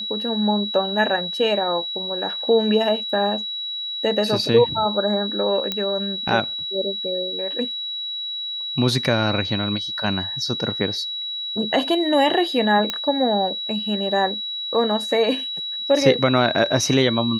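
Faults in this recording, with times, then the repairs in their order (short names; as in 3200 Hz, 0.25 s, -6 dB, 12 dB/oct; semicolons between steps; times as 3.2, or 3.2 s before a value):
tone 3900 Hz -26 dBFS
5.72 pop -9 dBFS
12.9 pop -8 dBFS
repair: de-click; notch 3900 Hz, Q 30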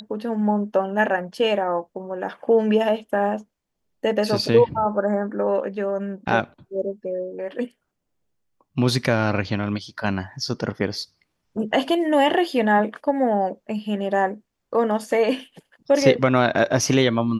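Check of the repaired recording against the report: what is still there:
none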